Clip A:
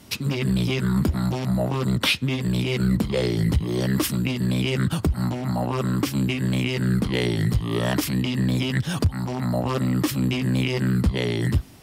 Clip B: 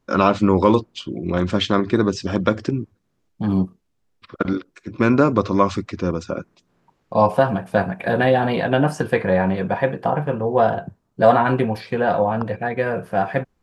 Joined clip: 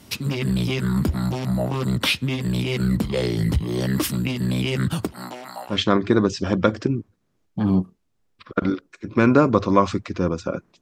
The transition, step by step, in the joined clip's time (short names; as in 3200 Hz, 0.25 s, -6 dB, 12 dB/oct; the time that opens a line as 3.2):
clip A
5.05–5.79 HPF 250 Hz -> 1500 Hz
5.73 switch to clip B from 1.56 s, crossfade 0.12 s